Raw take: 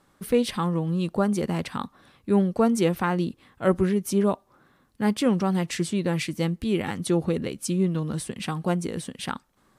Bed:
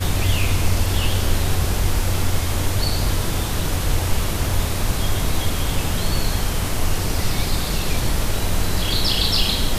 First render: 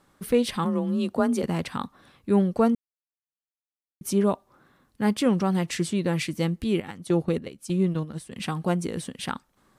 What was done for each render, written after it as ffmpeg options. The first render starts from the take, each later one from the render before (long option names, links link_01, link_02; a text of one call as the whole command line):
ffmpeg -i in.wav -filter_complex "[0:a]asplit=3[link_01][link_02][link_03];[link_01]afade=type=out:start_time=0.64:duration=0.02[link_04];[link_02]afreqshift=31,afade=type=in:start_time=0.64:duration=0.02,afade=type=out:start_time=1.42:duration=0.02[link_05];[link_03]afade=type=in:start_time=1.42:duration=0.02[link_06];[link_04][link_05][link_06]amix=inputs=3:normalize=0,asettb=1/sr,asplit=3[link_07][link_08][link_09];[link_07]atrim=end=6.804[link_10];[link_08]atrim=start=6.8:end=8.32,asetpts=PTS-STARTPTS,afade=type=in:duration=0.004:curve=qsin,afade=type=out:start_time=1.516:duration=0.004:curve=qsin,agate=range=-10dB:threshold=-28dB:ratio=16:release=100:detection=peak[link_11];[link_09]atrim=start=8.316[link_12];[link_10][link_11]acrossfade=duration=0.004:curve1=hsin:curve2=qsin[link_13];[link_13][link_12]acrossfade=duration=0.004:curve1=qsin:curve2=hsin,asplit=3[link_14][link_15][link_16];[link_14]atrim=end=2.75,asetpts=PTS-STARTPTS,afade=type=out:start_time=2.746:duration=0.004:curve=hsin[link_17];[link_15]atrim=start=2.75:end=4.01,asetpts=PTS-STARTPTS,volume=0[link_18];[link_16]atrim=start=4.01,asetpts=PTS-STARTPTS,afade=type=in:duration=0.004:curve=hsin[link_19];[link_17][link_18][link_19]concat=n=3:v=0:a=1" out.wav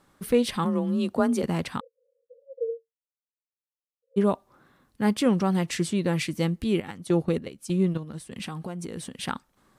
ffmpeg -i in.wav -filter_complex "[0:a]asplit=3[link_01][link_02][link_03];[link_01]afade=type=out:start_time=1.79:duration=0.02[link_04];[link_02]asuperpass=centerf=500:order=20:qfactor=5.1,afade=type=in:start_time=1.79:duration=0.02,afade=type=out:start_time=4.16:duration=0.02[link_05];[link_03]afade=type=in:start_time=4.16:duration=0.02[link_06];[link_04][link_05][link_06]amix=inputs=3:normalize=0,asettb=1/sr,asplit=3[link_07][link_08][link_09];[link_07]atrim=end=7.974[link_10];[link_08]atrim=start=7.97:end=9.17,asetpts=PTS-STARTPTS,afade=type=in:duration=0.004:curve=qsin,afade=type=out:start_time=1.196:duration=0.004:curve=qsin,acompressor=threshold=-31dB:ratio=5:attack=3.2:release=140:knee=1:detection=peak[link_11];[link_09]atrim=start=9.166[link_12];[link_10][link_11]acrossfade=duration=0.004:curve1=hsin:curve2=qsin[link_13];[link_13][link_12]acrossfade=duration=0.004:curve1=qsin:curve2=hsin" out.wav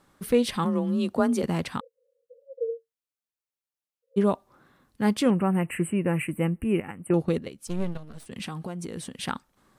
ffmpeg -i in.wav -filter_complex "[0:a]asettb=1/sr,asplit=3[link_01][link_02][link_03];[link_01]atrim=end=5.304[link_04];[link_02]atrim=start=5.3:end=7.14,asetpts=PTS-STARTPTS,afade=type=in:duration=0.004:curve=qsin,afade=type=out:start_time=1.836:duration=0.004:curve=qsin,asuperstop=centerf=4900:order=20:qfactor=0.96[link_05];[link_03]atrim=start=7.136[link_06];[link_04][link_05]acrossfade=duration=0.004:curve1=hsin:curve2=qsin[link_07];[link_07][link_06]acrossfade=duration=0.004:curve1=qsin:curve2=hsin,asettb=1/sr,asplit=3[link_08][link_09][link_10];[link_08]atrim=end=7.674[link_11];[link_09]atrim=start=7.67:end=8.26,asetpts=PTS-STARTPTS,afade=type=in:duration=0.004:curve=qsin,afade=type=out:start_time=0.586:duration=0.004:curve=qsin,aeval=exprs='max(val(0),0)':channel_layout=same[link_12];[link_10]atrim=start=8.256[link_13];[link_11][link_12]acrossfade=duration=0.004:curve1=hsin:curve2=qsin[link_14];[link_14][link_13]acrossfade=duration=0.004:curve1=qsin:curve2=hsin" out.wav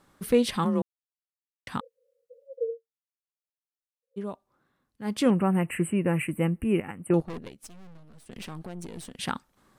ffmpeg -i in.wav -filter_complex "[0:a]asettb=1/sr,asplit=3[link_01][link_02][link_03];[link_01]atrim=end=7.204[link_04];[link_02]atrim=start=7.2:end=9.19,asetpts=PTS-STARTPTS,afade=type=in:duration=0.004:curve=qsin,afade=type=out:start_time=1.986:duration=0.004:curve=qsin,aeval=exprs='(tanh(50.1*val(0)+0.75)-tanh(0.75))/50.1':channel_layout=same[link_05];[link_03]atrim=start=9.186[link_06];[link_04][link_05]acrossfade=duration=0.004:curve1=hsin:curve2=qsin[link_07];[link_07][link_06]acrossfade=duration=0.004:curve1=qsin:curve2=hsin,asplit=5[link_08][link_09][link_10][link_11][link_12];[link_08]atrim=end=0.82,asetpts=PTS-STARTPTS,afade=type=out:start_time=0.816:duration=0.004:curve=hsin[link_13];[link_09]atrim=start=0.82:end=1.67,asetpts=PTS-STARTPTS,volume=0[link_14];[link_10]atrim=start=1.67:end=2.84,asetpts=PTS-STARTPTS,afade=type=in:duration=0.004:curve=hsin,afade=type=out:start_time=0.97:duration=0.2:silence=0.237137[link_15];[link_11]atrim=start=2.84:end=5.04,asetpts=PTS-STARTPTS,volume=-12.5dB[link_16];[link_12]atrim=start=5.04,asetpts=PTS-STARTPTS,afade=type=in:duration=0.2:silence=0.237137[link_17];[link_13][link_14][link_15][link_16][link_17]concat=n=5:v=0:a=1" out.wav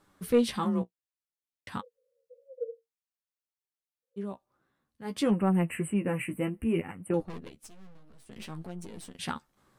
ffmpeg -i in.wav -af "flanger=delay=9.4:depth=7.4:regen=24:speed=0.56:shape=triangular,asoftclip=type=tanh:threshold=-12.5dB" out.wav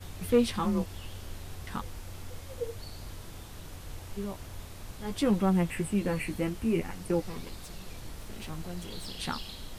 ffmpeg -i in.wav -i bed.wav -filter_complex "[1:a]volume=-22.5dB[link_01];[0:a][link_01]amix=inputs=2:normalize=0" out.wav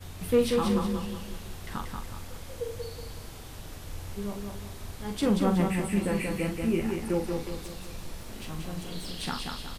ffmpeg -i in.wav -filter_complex "[0:a]asplit=2[link_01][link_02];[link_02]adelay=44,volume=-7.5dB[link_03];[link_01][link_03]amix=inputs=2:normalize=0,aecho=1:1:184|368|552|736|920:0.596|0.262|0.115|0.0507|0.0223" out.wav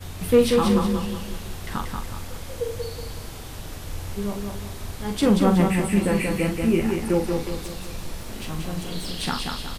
ffmpeg -i in.wav -af "volume=6.5dB" out.wav